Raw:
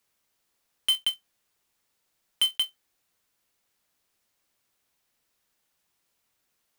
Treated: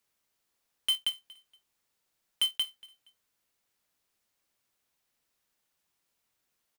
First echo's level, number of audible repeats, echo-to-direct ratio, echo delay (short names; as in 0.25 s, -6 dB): -21.5 dB, 2, -21.0 dB, 0.235 s